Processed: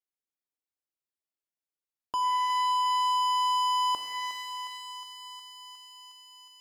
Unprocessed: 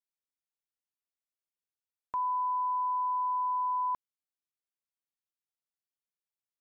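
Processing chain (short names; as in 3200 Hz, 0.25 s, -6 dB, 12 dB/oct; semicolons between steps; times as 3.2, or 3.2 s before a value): bell 650 Hz +2 dB 0.88 oct; sample leveller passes 3; bell 320 Hz +7 dB 0.86 oct; thinning echo 0.361 s, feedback 81%, high-pass 800 Hz, level -10.5 dB; shimmer reverb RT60 1.8 s, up +12 st, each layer -8 dB, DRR 5 dB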